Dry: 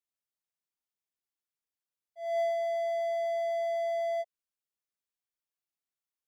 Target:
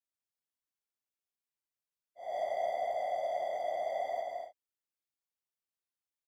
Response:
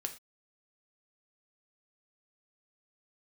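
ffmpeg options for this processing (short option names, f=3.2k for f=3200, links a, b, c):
-filter_complex "[0:a]afftfilt=real='hypot(re,im)*cos(2*PI*random(0))':imag='hypot(re,im)*sin(2*PI*random(1))':win_size=512:overlap=0.75,asplit=2[a][b];[b]aecho=0:1:139|222|257|280:0.447|0.531|0.316|0.2[c];[a][c]amix=inputs=2:normalize=0"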